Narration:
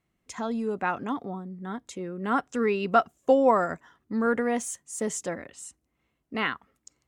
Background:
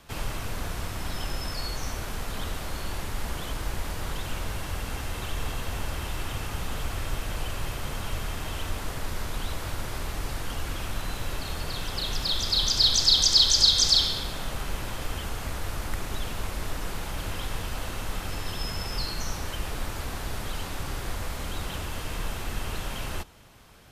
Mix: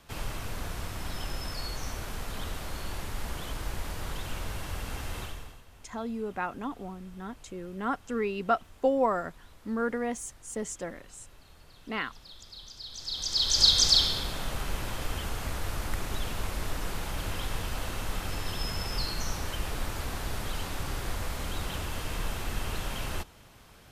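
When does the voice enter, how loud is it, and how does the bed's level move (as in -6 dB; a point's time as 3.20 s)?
5.55 s, -5.0 dB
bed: 5.21 s -3.5 dB
5.65 s -22.5 dB
12.86 s -22.5 dB
13.65 s -1 dB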